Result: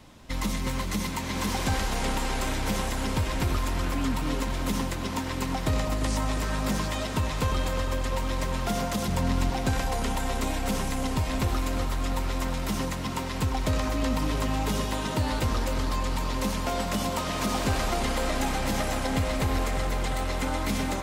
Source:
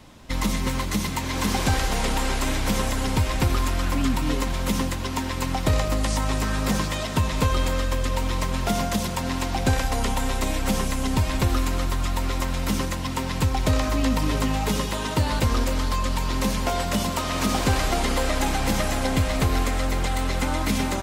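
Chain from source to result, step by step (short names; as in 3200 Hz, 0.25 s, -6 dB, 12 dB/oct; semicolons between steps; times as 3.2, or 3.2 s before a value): 9.08–9.5 low shelf 220 Hz +11 dB; in parallel at -5 dB: soft clip -24.5 dBFS, distortion -9 dB; on the sum: tape echo 0.351 s, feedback 88%, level -7.5 dB, low-pass 2700 Hz; gain -7 dB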